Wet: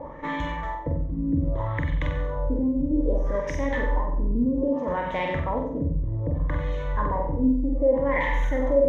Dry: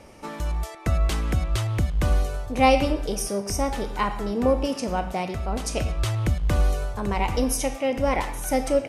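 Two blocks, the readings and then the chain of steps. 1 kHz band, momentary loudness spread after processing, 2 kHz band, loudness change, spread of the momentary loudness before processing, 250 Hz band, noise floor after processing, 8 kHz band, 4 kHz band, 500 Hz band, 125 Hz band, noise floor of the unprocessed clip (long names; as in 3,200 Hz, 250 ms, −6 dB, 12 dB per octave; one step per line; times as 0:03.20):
−4.0 dB, 6 LU, 0.0 dB, −1.0 dB, 7 LU, +2.5 dB, −32 dBFS, below −20 dB, −12.0 dB, 0.0 dB, −2.0 dB, −38 dBFS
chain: EQ curve with evenly spaced ripples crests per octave 1.1, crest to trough 14 dB
brickwall limiter −20 dBFS, peak gain reduction 17.5 dB
reversed playback
upward compression, threshold −30 dBFS
reversed playback
auto-filter low-pass sine 0.63 Hz 230–2,600 Hz
on a send: flutter between parallel walls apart 8 metres, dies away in 0.6 s
on the sum: one half of a high-frequency compander decoder only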